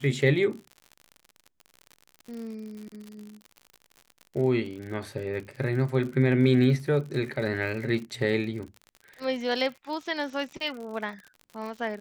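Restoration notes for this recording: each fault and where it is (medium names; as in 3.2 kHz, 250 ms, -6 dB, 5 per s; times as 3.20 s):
crackle 71 per s -36 dBFS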